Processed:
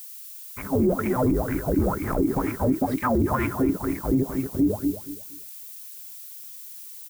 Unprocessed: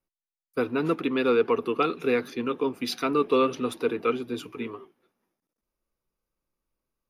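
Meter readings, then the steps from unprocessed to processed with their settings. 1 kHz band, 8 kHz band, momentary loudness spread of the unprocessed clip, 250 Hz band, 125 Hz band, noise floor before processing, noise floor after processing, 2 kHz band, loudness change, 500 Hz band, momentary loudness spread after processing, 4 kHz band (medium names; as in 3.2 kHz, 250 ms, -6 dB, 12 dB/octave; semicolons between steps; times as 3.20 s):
+0.5 dB, +7.5 dB, 12 LU, +6.0 dB, +13.5 dB, under -85 dBFS, -41 dBFS, -2.0 dB, +2.0 dB, -2.0 dB, 15 LU, under -10 dB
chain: every band turned upside down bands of 500 Hz; bass shelf 490 Hz +9.5 dB; touch-sensitive phaser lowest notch 460 Hz, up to 3.6 kHz, full sweep at -19.5 dBFS; waveshaping leveller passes 5; tilt EQ -4.5 dB/octave; in parallel at -2.5 dB: level held to a coarse grid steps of 16 dB; on the sum: wah-wah 2.1 Hz 310–2300 Hz, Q 8.9; level rider gain up to 11.5 dB; on a send: feedback delay 235 ms, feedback 24%, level -11.5 dB; on the sum: added noise violet -38 dBFS; peak limiter -10 dBFS, peak gain reduction 9.5 dB; trim -3 dB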